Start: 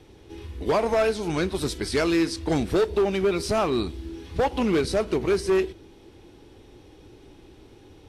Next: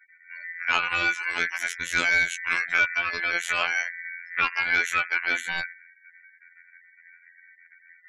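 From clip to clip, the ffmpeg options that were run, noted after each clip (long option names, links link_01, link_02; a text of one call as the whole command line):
ffmpeg -i in.wav -af "aeval=exprs='val(0)*sin(2*PI*1900*n/s)':channel_layout=same,afftfilt=real='hypot(re,im)*cos(PI*b)':imag='0':win_size=2048:overlap=0.75,afftfilt=real='re*gte(hypot(re,im),0.00562)':imag='im*gte(hypot(re,im),0.00562)':win_size=1024:overlap=0.75,volume=4.5dB" out.wav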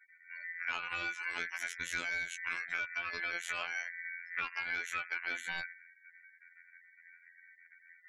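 ffmpeg -i in.wav -af "acompressor=threshold=-27dB:ratio=6,volume=-6dB" out.wav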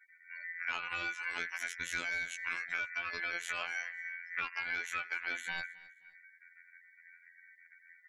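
ffmpeg -i in.wav -af "aecho=1:1:263|526:0.0794|0.0238" out.wav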